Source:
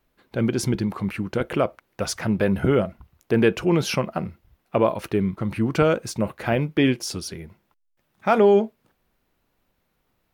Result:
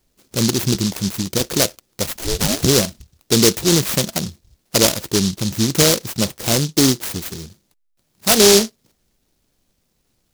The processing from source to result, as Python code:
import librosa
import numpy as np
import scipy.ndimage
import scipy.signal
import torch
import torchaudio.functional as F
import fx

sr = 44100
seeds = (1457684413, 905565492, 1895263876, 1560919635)

y = fx.ring_mod(x, sr, carrier_hz=fx.line((2.06, 96.0), (2.61, 590.0)), at=(2.06, 2.61), fade=0.02)
y = fx.noise_mod_delay(y, sr, seeds[0], noise_hz=4900.0, depth_ms=0.29)
y = y * librosa.db_to_amplitude(4.5)